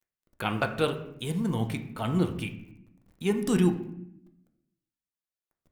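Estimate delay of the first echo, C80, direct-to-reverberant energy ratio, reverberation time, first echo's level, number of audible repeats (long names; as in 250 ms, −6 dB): no echo audible, 12.5 dB, 5.0 dB, 0.70 s, no echo audible, no echo audible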